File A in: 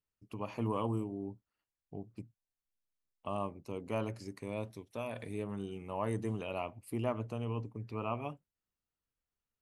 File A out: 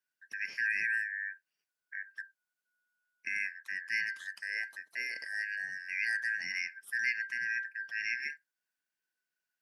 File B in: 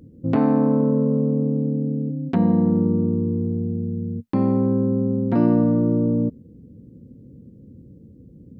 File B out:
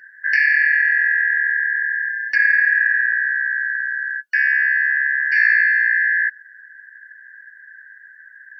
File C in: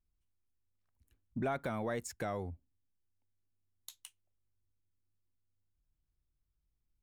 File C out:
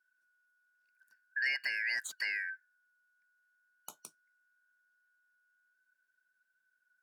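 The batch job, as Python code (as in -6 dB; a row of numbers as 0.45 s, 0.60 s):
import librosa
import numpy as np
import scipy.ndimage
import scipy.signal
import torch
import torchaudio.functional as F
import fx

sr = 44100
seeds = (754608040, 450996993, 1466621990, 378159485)

y = fx.band_shuffle(x, sr, order='3142')
y = scipy.signal.sosfilt(scipy.signal.butter(4, 150.0, 'highpass', fs=sr, output='sos'), y)
y = fx.dynamic_eq(y, sr, hz=2700.0, q=7.9, threshold_db=-46.0, ratio=4.0, max_db=-5)
y = y * librosa.db_to_amplitude(2.0)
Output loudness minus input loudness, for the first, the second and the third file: +4.5 LU, +4.5 LU, +4.5 LU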